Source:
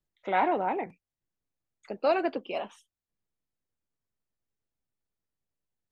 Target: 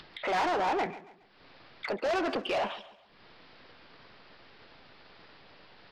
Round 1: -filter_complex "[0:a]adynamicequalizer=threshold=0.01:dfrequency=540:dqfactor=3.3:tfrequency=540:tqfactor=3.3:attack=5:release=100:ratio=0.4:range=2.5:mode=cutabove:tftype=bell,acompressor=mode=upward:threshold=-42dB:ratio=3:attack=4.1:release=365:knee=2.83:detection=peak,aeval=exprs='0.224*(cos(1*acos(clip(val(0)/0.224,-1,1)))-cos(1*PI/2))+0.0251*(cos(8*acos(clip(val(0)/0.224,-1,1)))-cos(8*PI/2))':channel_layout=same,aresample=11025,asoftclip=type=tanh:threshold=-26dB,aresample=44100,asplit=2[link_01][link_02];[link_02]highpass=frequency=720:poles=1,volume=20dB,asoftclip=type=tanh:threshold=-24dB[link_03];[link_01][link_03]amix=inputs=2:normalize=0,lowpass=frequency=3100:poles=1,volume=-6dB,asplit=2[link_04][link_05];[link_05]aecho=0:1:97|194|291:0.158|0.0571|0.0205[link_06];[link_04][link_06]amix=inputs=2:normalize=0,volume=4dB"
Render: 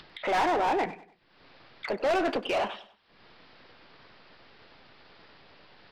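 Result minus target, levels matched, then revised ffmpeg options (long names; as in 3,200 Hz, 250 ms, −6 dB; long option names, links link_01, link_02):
echo 42 ms early; soft clipping: distortion −7 dB
-filter_complex "[0:a]adynamicequalizer=threshold=0.01:dfrequency=540:dqfactor=3.3:tfrequency=540:tqfactor=3.3:attack=5:release=100:ratio=0.4:range=2.5:mode=cutabove:tftype=bell,acompressor=mode=upward:threshold=-42dB:ratio=3:attack=4.1:release=365:knee=2.83:detection=peak,aeval=exprs='0.224*(cos(1*acos(clip(val(0)/0.224,-1,1)))-cos(1*PI/2))+0.0251*(cos(8*acos(clip(val(0)/0.224,-1,1)))-cos(8*PI/2))':channel_layout=same,aresample=11025,asoftclip=type=tanh:threshold=-36.5dB,aresample=44100,asplit=2[link_01][link_02];[link_02]highpass=frequency=720:poles=1,volume=20dB,asoftclip=type=tanh:threshold=-24dB[link_03];[link_01][link_03]amix=inputs=2:normalize=0,lowpass=frequency=3100:poles=1,volume=-6dB,asplit=2[link_04][link_05];[link_05]aecho=0:1:139|278|417:0.158|0.0571|0.0205[link_06];[link_04][link_06]amix=inputs=2:normalize=0,volume=4dB"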